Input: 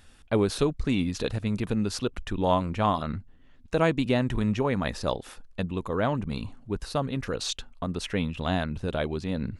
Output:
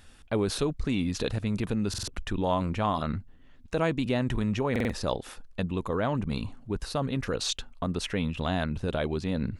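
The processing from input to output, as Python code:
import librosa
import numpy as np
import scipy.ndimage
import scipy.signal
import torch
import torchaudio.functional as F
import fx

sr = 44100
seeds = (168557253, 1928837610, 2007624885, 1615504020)

p1 = fx.over_compress(x, sr, threshold_db=-29.0, ratio=-1.0)
p2 = x + F.gain(torch.from_numpy(p1), -2.5).numpy()
p3 = fx.buffer_glitch(p2, sr, at_s=(1.89, 4.71), block=2048, repeats=3)
y = F.gain(torch.from_numpy(p3), -5.0).numpy()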